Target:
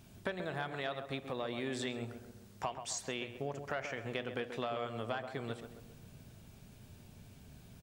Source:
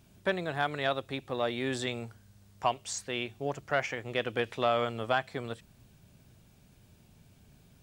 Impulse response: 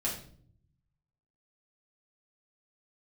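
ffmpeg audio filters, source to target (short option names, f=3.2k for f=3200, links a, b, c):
-filter_complex "[0:a]acompressor=threshold=-39dB:ratio=5,asplit=2[a][b];[b]adelay=134,lowpass=f=1.7k:p=1,volume=-8dB,asplit=2[c][d];[d]adelay=134,lowpass=f=1.7k:p=1,volume=0.51,asplit=2[e][f];[f]adelay=134,lowpass=f=1.7k:p=1,volume=0.51,asplit=2[g][h];[h]adelay=134,lowpass=f=1.7k:p=1,volume=0.51,asplit=2[i][j];[j]adelay=134,lowpass=f=1.7k:p=1,volume=0.51,asplit=2[k][l];[l]adelay=134,lowpass=f=1.7k:p=1,volume=0.51[m];[a][c][e][g][i][k][m]amix=inputs=7:normalize=0,asplit=2[n][o];[1:a]atrim=start_sample=2205[p];[o][p]afir=irnorm=-1:irlink=0,volume=-18.5dB[q];[n][q]amix=inputs=2:normalize=0,volume=2dB"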